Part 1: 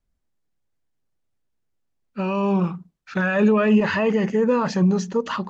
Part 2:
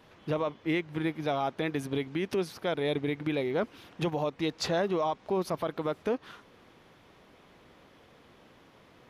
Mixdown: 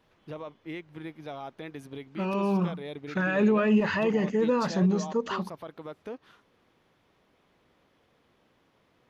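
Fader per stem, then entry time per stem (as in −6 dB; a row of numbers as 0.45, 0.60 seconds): −5.5, −9.5 decibels; 0.00, 0.00 seconds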